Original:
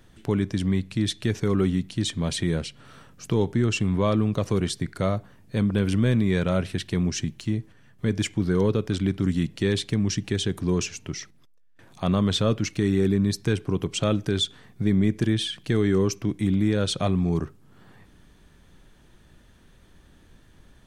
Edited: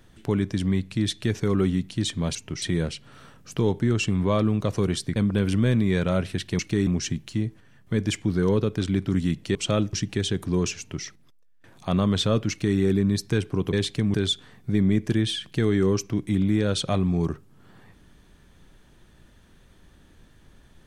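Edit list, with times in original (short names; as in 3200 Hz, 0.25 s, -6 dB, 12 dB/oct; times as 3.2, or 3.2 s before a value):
4.89–5.56 cut
9.67–10.08 swap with 13.88–14.26
10.93–11.2 copy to 2.35
12.65–12.93 copy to 6.99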